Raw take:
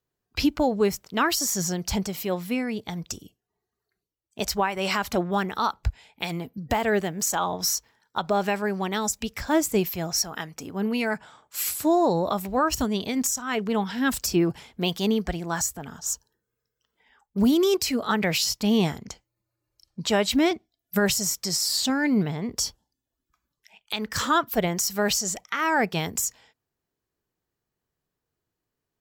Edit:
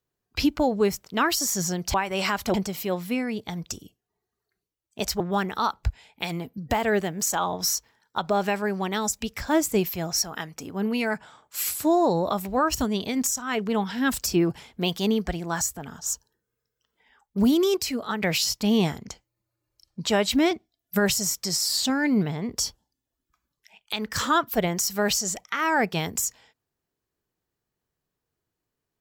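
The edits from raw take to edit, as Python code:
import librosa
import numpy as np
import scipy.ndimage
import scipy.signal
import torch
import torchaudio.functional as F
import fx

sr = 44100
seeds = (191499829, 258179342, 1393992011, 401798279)

y = fx.edit(x, sr, fx.move(start_s=4.6, length_s=0.6, to_s=1.94),
    fx.fade_out_to(start_s=17.52, length_s=0.7, floor_db=-6.0), tone=tone)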